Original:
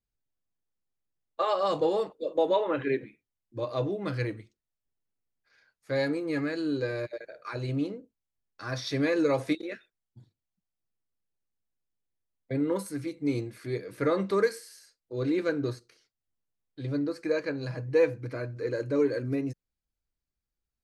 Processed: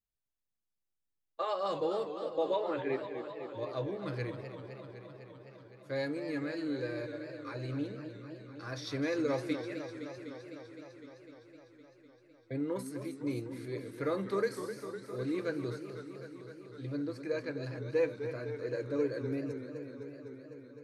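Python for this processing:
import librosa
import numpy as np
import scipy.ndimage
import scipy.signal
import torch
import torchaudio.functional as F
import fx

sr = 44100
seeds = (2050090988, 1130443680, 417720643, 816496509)

y = fx.echo_warbled(x, sr, ms=254, feedback_pct=78, rate_hz=2.8, cents=143, wet_db=-10)
y = F.gain(torch.from_numpy(y), -7.0).numpy()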